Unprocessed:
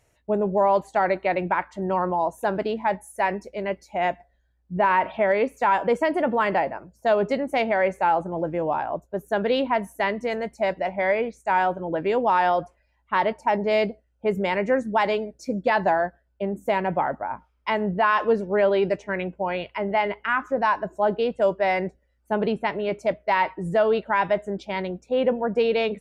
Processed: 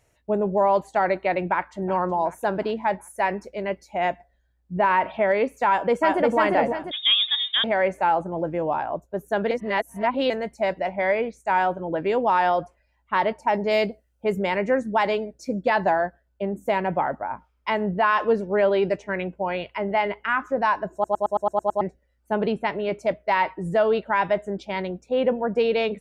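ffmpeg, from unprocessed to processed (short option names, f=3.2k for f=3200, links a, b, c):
-filter_complex "[0:a]asplit=2[a][b];[b]afade=t=in:st=1.44:d=0.01,afade=t=out:st=1.89:d=0.01,aecho=0:1:370|740|1110|1480|1850:0.141254|0.0776896|0.0427293|0.0235011|0.0129256[c];[a][c]amix=inputs=2:normalize=0,asplit=2[d][e];[e]afade=t=in:st=5.68:d=0.01,afade=t=out:st=6.37:d=0.01,aecho=0:1:350|700|1050|1400|1750:0.794328|0.317731|0.127093|0.050837|0.0203348[f];[d][f]amix=inputs=2:normalize=0,asettb=1/sr,asplit=3[g][h][i];[g]atrim=end=6.914[j];[h]atrim=start=6.91:end=7.64,asetpts=PTS-STARTPTS,afade=t=in:d=0.004:c=qsin,afade=t=out:st=0.726:d=0.004:c=qsin,lowpass=f=3.3k:t=q:w=0.5098,lowpass=f=3.3k:t=q:w=0.6013,lowpass=f=3.3k:t=q:w=0.9,lowpass=f=3.3k:t=q:w=2.563,afreqshift=-3900[k];[i]atrim=start=7.636[l];[j][k]acrossfade=d=0.004:c1=hsin:c2=qsin[m];[m][l]acrossfade=d=0.004:c1=qsin:c2=hsin,asettb=1/sr,asplit=3[n][o][p];[n]atrim=end=13.544[q];[o]atrim=start=13.54:end=14.35,asetpts=PTS-STARTPTS,afade=t=in:d=0.004:c=qsin,afade=t=out:st=0.806:d=0.004:c=qsin,aemphasis=mode=production:type=cd[r];[p]atrim=start=14.346[s];[q][r]acrossfade=d=0.004:c1=hsin:c2=qsin[t];[t][s]acrossfade=d=0.004:c1=qsin:c2=hsin,asplit=11[u][v][w][x][y][z][aa][ab][ac][ad][ae];[u]atrim=end=9.512[af];[v]atrim=start=9.508:end=10.302,asetpts=PTS-STARTPTS,areverse[ag];[w]atrim=start=10.298:end=21.042[ah];[x]atrim=start=20.928:end=21.042[ai];[y]atrim=start=20.928:end=21.042[aj];[z]atrim=start=20.928:end=21.042[ak];[aa]atrim=start=20.928:end=21.042[al];[ab]atrim=start=20.928:end=21.042[am];[ac]atrim=start=20.928:end=21.042[an];[ad]atrim=start=20.928:end=21.042[ao];[ae]atrim=start=21.808[ap];[af][ag]acrossfade=d=0.004:c1=hsin:c2=hsin[aq];[aq][ah]acrossfade=d=0.004:c1=hsin:c2=hsin[ar];[ar][ai]acrossfade=d=0.004:c1=hsin:c2=hsin[as];[as][aj]acrossfade=d=0.004:c1=hsin:c2=hsin[at];[at][ak]acrossfade=d=0.004:c1=hsin:c2=hsin[au];[au][al]acrossfade=d=0.004:c1=hsin:c2=hsin[av];[av][am]acrossfade=d=0.004:c1=hsin:c2=hsin[aw];[aw][an]acrossfade=d=0.004:c1=hsin:c2=hsin[ax];[ax][ao]acrossfade=d=0.004:c1=hsin:c2=hsin[ay];[ay][ap]acrossfade=d=0.004:c1=hsin:c2=hsin"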